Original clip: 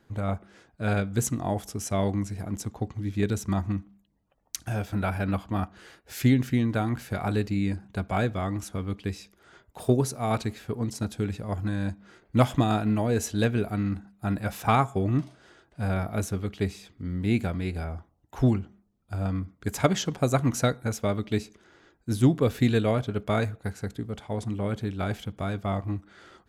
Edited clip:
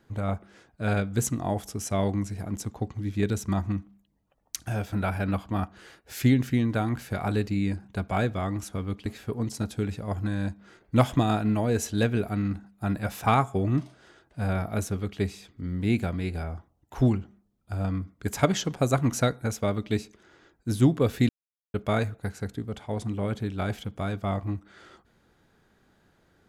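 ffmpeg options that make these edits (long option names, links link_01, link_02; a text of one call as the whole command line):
ffmpeg -i in.wav -filter_complex "[0:a]asplit=4[link_01][link_02][link_03][link_04];[link_01]atrim=end=9.062[link_05];[link_02]atrim=start=10.468:end=22.7,asetpts=PTS-STARTPTS,afade=type=out:start_time=12.228:duration=0.004:curve=hsin[link_06];[link_03]atrim=start=22.7:end=23.15,asetpts=PTS-STARTPTS,volume=0[link_07];[link_04]atrim=start=23.15,asetpts=PTS-STARTPTS,afade=type=in:duration=0.004:curve=hsin[link_08];[link_06][link_07][link_08]concat=n=3:v=0:a=1[link_09];[link_05][link_09]acrossfade=duration=0.004:curve1=hsin:curve2=hsin" out.wav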